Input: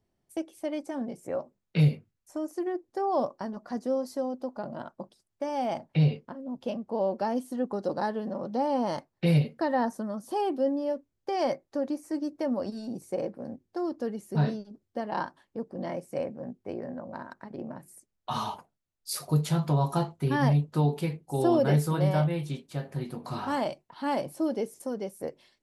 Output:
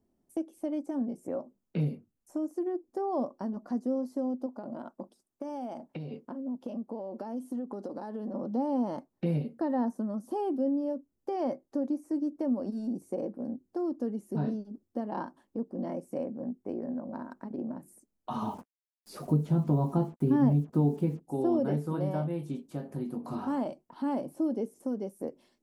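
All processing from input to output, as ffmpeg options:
ffmpeg -i in.wav -filter_complex "[0:a]asettb=1/sr,asplit=3[link_01][link_02][link_03];[link_01]atrim=end=4.464[link_04];[link_02]atrim=start=4.46:end=8.34,asetpts=PTS-STARTPTS,afade=type=in:duration=0.004:curve=qsin,afade=type=out:start_time=3.876:duration=0.004:curve=qsin,lowshelf=frequency=160:gain=-10.5,acompressor=threshold=-34dB:ratio=6:attack=3.2:release=140:knee=1:detection=peak[link_05];[link_03]atrim=start=8.336[link_06];[link_04][link_05]acrossfade=duration=0.004:curve1=hsin:curve2=qsin[link_07];[link_07][link_06]acrossfade=duration=0.004:curve1=qsin:curve2=hsin,asettb=1/sr,asplit=3[link_08][link_09][link_10];[link_08]atrim=end=18.424[link_11];[link_09]atrim=start=18.42:end=21.2,asetpts=PTS-STARTPTS,afade=type=in:duration=0.004:curve=qsin,afade=type=out:start_time=2.776:duration=0.004:curve=qsin,lowshelf=frequency=490:gain=9.5,acrusher=bits=7:mix=0:aa=0.5[link_12];[link_10]atrim=start=21.196[link_13];[link_11][link_12]acrossfade=duration=0.004:curve1=hsin:curve2=qsin[link_14];[link_14][link_13]acrossfade=duration=0.004:curve1=qsin:curve2=hsin,acrossover=split=3900[link_15][link_16];[link_16]acompressor=threshold=-53dB:ratio=4:attack=1:release=60[link_17];[link_15][link_17]amix=inputs=2:normalize=0,equalizer=frequency=125:width_type=o:width=1:gain=-6,equalizer=frequency=250:width_type=o:width=1:gain=10,equalizer=frequency=2000:width_type=o:width=1:gain=-7,equalizer=frequency=4000:width_type=o:width=1:gain=-8,acompressor=threshold=-38dB:ratio=1.5" out.wav

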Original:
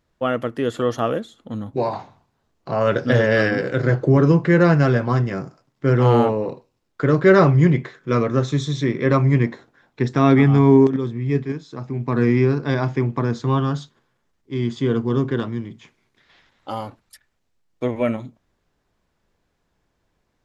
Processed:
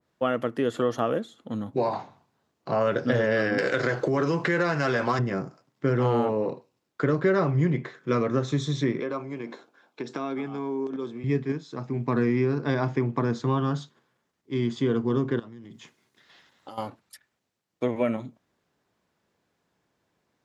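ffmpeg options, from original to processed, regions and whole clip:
ffmpeg -i in.wav -filter_complex "[0:a]asettb=1/sr,asplit=3[link_01][link_02][link_03];[link_01]atrim=end=3.584[link_04];[link_02]atrim=start=3.58:end=5.19,asetpts=PTS-STARTPTS,afade=type=in:duration=0.004:curve=qsin,afade=type=out:start_time=1.606:duration=0.004:curve=qsin,highshelf=frequency=3000:gain=11,acompressor=threshold=-17dB:ratio=6:attack=3.2:release=140:knee=1:detection=peak,asplit=2[link_05][link_06];[link_06]highpass=frequency=720:poles=1,volume=12dB,asoftclip=type=tanh:threshold=-7.5dB[link_07];[link_05][link_07]amix=inputs=2:normalize=0,lowpass=frequency=6400:poles=1,volume=-6dB[link_08];[link_03]atrim=start=5.186[link_09];[link_04][link_08]acrossfade=duration=0.004:curve1=hsin:curve2=qsin[link_10];[link_10][link_09]acrossfade=duration=0.004:curve1=qsin:curve2=hsin,asettb=1/sr,asplit=3[link_11][link_12][link_13];[link_11]atrim=end=9.004[link_14];[link_12]atrim=start=9:end=11.24,asetpts=PTS-STARTPTS,afade=type=in:duration=0.004:curve=qsin,afade=type=out:start_time=2.236:duration=0.004:curve=qsin,bandreject=frequency=1900:width=5.2,acompressor=threshold=-22dB:ratio=6:attack=3.2:release=140:knee=1:detection=peak,highpass=290[link_15];[link_13]atrim=start=11.236[link_16];[link_14][link_15]acrossfade=duration=0.004:curve1=hsin:curve2=qsin[link_17];[link_17][link_16]acrossfade=duration=0.004:curve1=qsin:curve2=hsin,asettb=1/sr,asplit=3[link_18][link_19][link_20];[link_18]atrim=end=15.394[link_21];[link_19]atrim=start=15.39:end=16.78,asetpts=PTS-STARTPTS,afade=type=in:duration=0.004:curve=qsin,afade=type=out:start_time=1.386:duration=0.004:curve=qsin,highshelf=frequency=5700:gain=8,bandreject=frequency=2300:width=12,acompressor=threshold=-36dB:ratio=16:attack=3.2:release=140:knee=1:detection=peak[link_22];[link_20]atrim=start=16.776[link_23];[link_21][link_22]acrossfade=duration=0.004:curve1=hsin:curve2=qsin[link_24];[link_24][link_23]acrossfade=duration=0.004:curve1=qsin:curve2=hsin,highpass=130,acompressor=threshold=-18dB:ratio=5,adynamicequalizer=threshold=0.0112:dfrequency=1800:dqfactor=0.7:tfrequency=1800:tqfactor=0.7:attack=5:release=100:ratio=0.375:range=1.5:mode=cutabove:tftype=highshelf,volume=-1.5dB" out.wav

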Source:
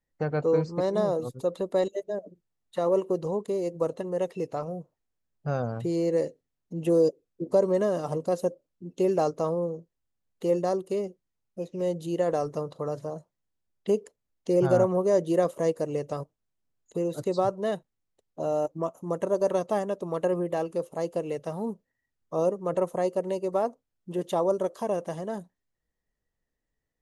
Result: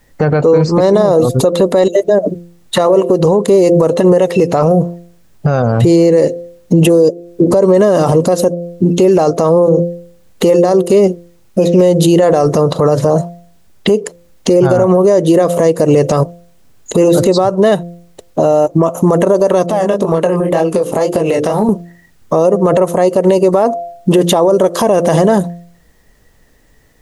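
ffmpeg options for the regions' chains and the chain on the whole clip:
ffmpeg -i in.wav -filter_complex "[0:a]asettb=1/sr,asplit=3[link_01][link_02][link_03];[link_01]atrim=end=19.664[link_04];[link_02]atrim=start=19.66:end=21.69,asetpts=PTS-STARTPTS,afade=type=in:duration=0.004:curve=qsin,afade=type=out:start_time=2.026:duration=0.004:curve=qsin,flanger=delay=18.5:depth=5.7:speed=2,bandreject=frequency=50:width_type=h:width=6,bandreject=frequency=100:width_type=h:width=6,bandreject=frequency=150:width_type=h:width=6,bandreject=frequency=200:width_type=h:width=6,bandreject=frequency=250:width_type=h:width=6,bandreject=frequency=300:width_type=h:width=6,bandreject=frequency=350:width_type=h:width=6,bandreject=frequency=400:width_type=h:width=6,bandreject=frequency=450:width_type=h:width=6,acompressor=threshold=-42dB:ratio=8:attack=3.2:release=140:knee=1:detection=peak[link_05];[link_03]atrim=start=21.686[link_06];[link_04][link_05]acrossfade=duration=0.004:curve1=hsin:curve2=qsin[link_07];[link_07][link_06]acrossfade=duration=0.004:curve1=qsin:curve2=hsin,bandreject=frequency=172.4:width_type=h:width=4,bandreject=frequency=344.8:width_type=h:width=4,bandreject=frequency=517.2:width_type=h:width=4,bandreject=frequency=689.6:width_type=h:width=4,acompressor=threshold=-33dB:ratio=10,alimiter=level_in=34.5dB:limit=-1dB:release=50:level=0:latency=1,volume=-1dB" out.wav

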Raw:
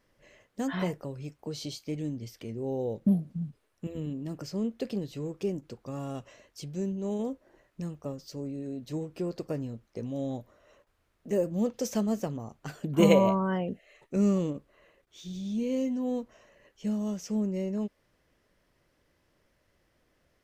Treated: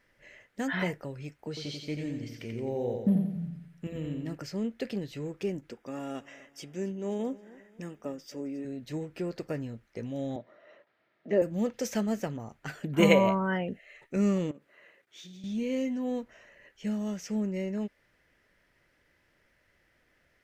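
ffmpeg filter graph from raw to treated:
ffmpeg -i in.wav -filter_complex "[0:a]asettb=1/sr,asplit=3[link_01][link_02][link_03];[link_01]atrim=end=1.484[link_04];[link_02]atrim=start=1.48:end=4.35,asetpts=PTS-STARTPTS,afade=type=in:duration=0.004:curve=qsin,afade=type=out:start_time=2.866:duration=0.004:curve=qsin,acrossover=split=5400[link_05][link_06];[link_06]acompressor=threshold=-59dB:ratio=4:attack=1:release=60[link_07];[link_05][link_07]amix=inputs=2:normalize=0,aecho=1:1:88|176|264|352|440|528:0.562|0.259|0.119|0.0547|0.0252|0.0116,atrim=end_sample=126567[link_08];[link_03]atrim=start=4.346[link_09];[link_04][link_08]acrossfade=duration=0.004:curve1=hsin:curve2=qsin[link_10];[link_10][link_09]acrossfade=duration=0.004:curve1=qsin:curve2=hsin,asettb=1/sr,asplit=3[link_11][link_12][link_13];[link_11]atrim=end=5.714[link_14];[link_12]atrim=start=5.71:end=8.65,asetpts=PTS-STARTPTS,afade=type=in:duration=0.004:curve=qsin,afade=type=out:start_time=2.936:duration=0.004:curve=qsin,asuperstop=centerf=4200:order=20:qfactor=6.7,lowshelf=frequency=180:width_type=q:width=1.5:gain=-8.5,aecho=1:1:267|534|801:0.1|0.042|0.0176,atrim=end_sample=129654[link_15];[link_13]atrim=start=8.646[link_16];[link_14][link_15]acrossfade=duration=0.004:curve1=hsin:curve2=qsin[link_17];[link_17][link_16]acrossfade=duration=0.004:curve1=qsin:curve2=hsin,asettb=1/sr,asplit=3[link_18][link_19][link_20];[link_18]atrim=end=10.364[link_21];[link_19]atrim=start=10.36:end=11.42,asetpts=PTS-STARTPTS,afade=type=in:duration=0.004:curve=qsin,afade=type=out:start_time=1.056:duration=0.004:curve=qsin,highpass=frequency=140:width=0.5412,highpass=frequency=140:width=1.3066,equalizer=frequency=340:width_type=q:width=4:gain=5,equalizer=frequency=640:width_type=q:width=4:gain=8,equalizer=frequency=1400:width_type=q:width=4:gain=3,equalizer=frequency=2600:width_type=q:width=4:gain=-3,lowpass=frequency=4500:width=0.5412,lowpass=frequency=4500:width=1.3066,bandreject=frequency=1500:width=9.2[link_22];[link_20]atrim=start=11.416[link_23];[link_21][link_22]acrossfade=duration=0.004:curve1=hsin:curve2=qsin[link_24];[link_24][link_23]acrossfade=duration=0.004:curve1=qsin:curve2=hsin,asettb=1/sr,asplit=3[link_25][link_26][link_27];[link_25]atrim=end=14.514[link_28];[link_26]atrim=start=14.51:end=15.44,asetpts=PTS-STARTPTS,afade=type=in:duration=0.004:curve=qsin,afade=type=out:start_time=0.926:duration=0.004:curve=qsin,highpass=170,acompressor=threshold=-44dB:ratio=6:attack=3.2:release=140:knee=1:detection=peak[link_29];[link_27]atrim=start=15.436[link_30];[link_28][link_29]acrossfade=duration=0.004:curve1=hsin:curve2=qsin[link_31];[link_31][link_30]acrossfade=duration=0.004:curve1=qsin:curve2=hsin,equalizer=frequency=1900:width=1.2:gain=10,bandreject=frequency=1100:width=9.7,volume=-1.5dB" out.wav

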